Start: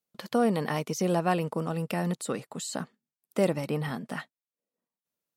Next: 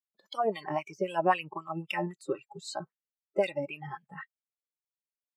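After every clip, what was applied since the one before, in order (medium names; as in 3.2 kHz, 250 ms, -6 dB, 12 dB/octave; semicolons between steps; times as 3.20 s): spectral noise reduction 26 dB; wah-wah 3.8 Hz 390–3200 Hz, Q 2.1; trim +7.5 dB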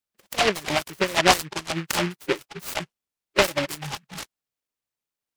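delay time shaken by noise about 1.8 kHz, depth 0.22 ms; trim +7.5 dB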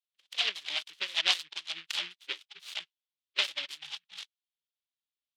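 band-pass filter 3.4 kHz, Q 3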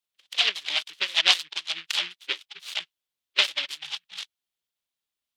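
harmonic-percussive split percussive +3 dB; trim +4.5 dB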